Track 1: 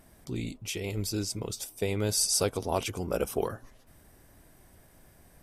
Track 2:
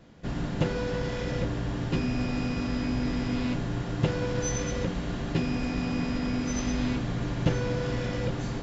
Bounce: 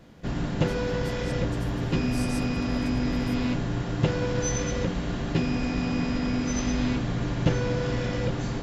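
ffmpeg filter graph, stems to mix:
ffmpeg -i stem1.wav -i stem2.wav -filter_complex "[0:a]volume=-16dB[link_01];[1:a]acontrast=34,volume=-3dB[link_02];[link_01][link_02]amix=inputs=2:normalize=0" out.wav

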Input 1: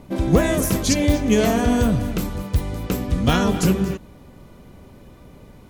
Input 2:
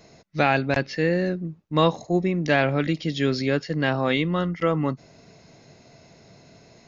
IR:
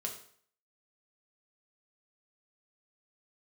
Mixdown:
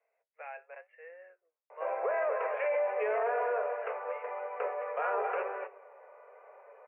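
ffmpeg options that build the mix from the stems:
-filter_complex "[0:a]lowpass=1600,adelay=1700,volume=2dB,asplit=2[link_01][link_02];[link_02]volume=-8.5dB[link_03];[1:a]volume=-19.5dB[link_04];[2:a]atrim=start_sample=2205[link_05];[link_03][link_05]afir=irnorm=-1:irlink=0[link_06];[link_01][link_04][link_06]amix=inputs=3:normalize=0,flanger=delay=8.8:depth=4.7:regen=62:speed=0.9:shape=sinusoidal,asuperpass=centerf=1100:order=20:qfactor=0.51,alimiter=limit=-23.5dB:level=0:latency=1:release=16"

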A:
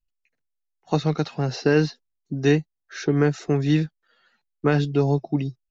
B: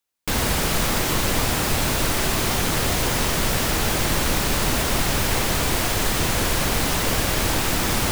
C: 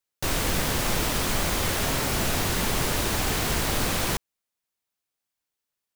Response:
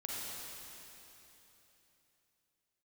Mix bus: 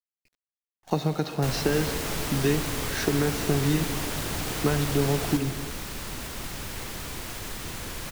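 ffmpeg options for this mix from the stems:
-filter_complex "[0:a]acompressor=threshold=-23dB:ratio=6,volume=0dB,asplit=2[link_01][link_02];[link_02]volume=-7dB[link_03];[1:a]equalizer=frequency=670:width=1.5:gain=-3.5,adelay=1450,volume=-14dB[link_04];[2:a]adelay=1200,volume=-7dB[link_05];[3:a]atrim=start_sample=2205[link_06];[link_03][link_06]afir=irnorm=-1:irlink=0[link_07];[link_01][link_04][link_05][link_07]amix=inputs=4:normalize=0,acrusher=bits=8:dc=4:mix=0:aa=0.000001"

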